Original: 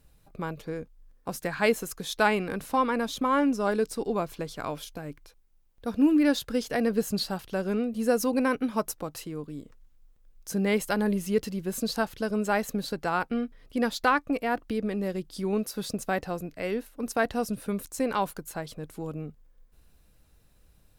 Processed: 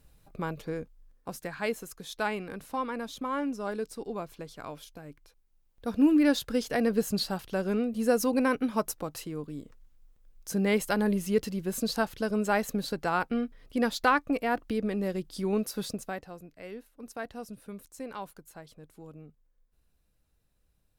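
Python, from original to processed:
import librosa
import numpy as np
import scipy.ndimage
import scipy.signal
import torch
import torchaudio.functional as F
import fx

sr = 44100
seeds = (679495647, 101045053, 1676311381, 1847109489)

y = fx.gain(x, sr, db=fx.line((0.78, 0.0), (1.61, -7.5), (5.09, -7.5), (5.94, -0.5), (15.82, -0.5), (16.28, -12.0)))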